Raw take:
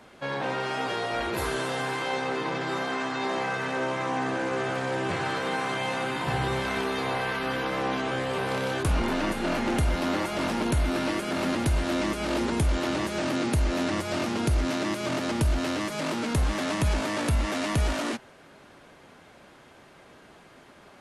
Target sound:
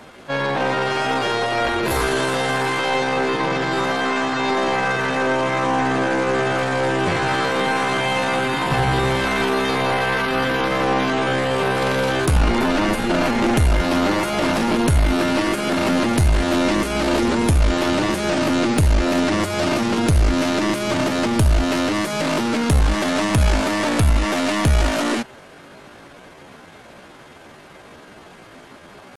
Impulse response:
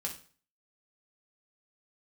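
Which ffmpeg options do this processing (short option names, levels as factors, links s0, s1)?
-af "atempo=0.72,aeval=exprs='0.158*(cos(1*acos(clip(val(0)/0.158,-1,1)))-cos(1*PI/2))+0.0316*(cos(2*acos(clip(val(0)/0.158,-1,1)))-cos(2*PI/2))+0.00708*(cos(5*acos(clip(val(0)/0.158,-1,1)))-cos(5*PI/2))':c=same,volume=2.51"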